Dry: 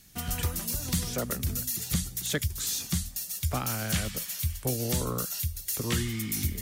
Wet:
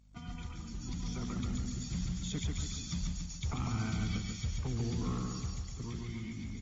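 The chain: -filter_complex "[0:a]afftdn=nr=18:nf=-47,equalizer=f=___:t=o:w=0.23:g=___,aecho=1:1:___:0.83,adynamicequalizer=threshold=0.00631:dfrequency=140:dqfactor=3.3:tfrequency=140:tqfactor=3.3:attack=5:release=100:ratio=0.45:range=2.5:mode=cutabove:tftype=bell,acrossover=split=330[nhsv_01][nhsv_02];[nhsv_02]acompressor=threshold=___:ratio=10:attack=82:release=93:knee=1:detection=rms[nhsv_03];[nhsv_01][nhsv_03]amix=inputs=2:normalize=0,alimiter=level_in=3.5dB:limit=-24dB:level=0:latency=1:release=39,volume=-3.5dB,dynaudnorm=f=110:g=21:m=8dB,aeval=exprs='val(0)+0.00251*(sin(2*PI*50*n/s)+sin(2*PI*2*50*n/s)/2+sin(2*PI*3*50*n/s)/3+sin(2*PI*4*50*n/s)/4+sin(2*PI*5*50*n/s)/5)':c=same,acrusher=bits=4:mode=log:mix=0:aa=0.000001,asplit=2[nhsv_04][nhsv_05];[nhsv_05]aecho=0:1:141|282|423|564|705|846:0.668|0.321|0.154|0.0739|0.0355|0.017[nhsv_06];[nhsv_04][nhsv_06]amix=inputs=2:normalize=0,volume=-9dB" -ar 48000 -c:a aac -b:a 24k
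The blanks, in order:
85, -12.5, 0.9, -44dB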